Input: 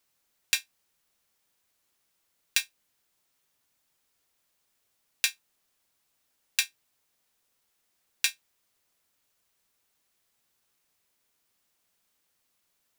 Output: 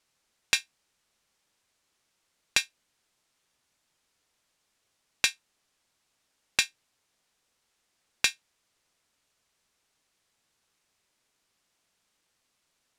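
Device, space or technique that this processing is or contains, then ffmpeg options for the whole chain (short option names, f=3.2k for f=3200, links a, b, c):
overflowing digital effects unit: -af "aeval=exprs='(mod(1.5*val(0)+1,2)-1)/1.5':c=same,lowpass=8.6k,volume=2.5dB"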